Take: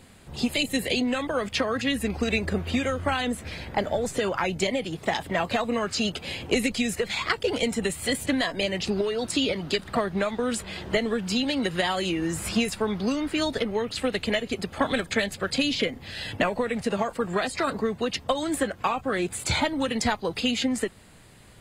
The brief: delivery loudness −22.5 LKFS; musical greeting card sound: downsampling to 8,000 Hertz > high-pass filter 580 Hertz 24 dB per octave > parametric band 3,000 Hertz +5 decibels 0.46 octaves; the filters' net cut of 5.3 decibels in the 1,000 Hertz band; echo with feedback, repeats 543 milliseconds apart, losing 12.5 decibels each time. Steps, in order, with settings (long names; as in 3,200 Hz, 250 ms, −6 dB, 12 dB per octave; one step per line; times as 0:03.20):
parametric band 1,000 Hz −7 dB
repeating echo 543 ms, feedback 24%, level −12.5 dB
downsampling to 8,000 Hz
high-pass filter 580 Hz 24 dB per octave
parametric band 3,000 Hz +5 dB 0.46 octaves
level +7.5 dB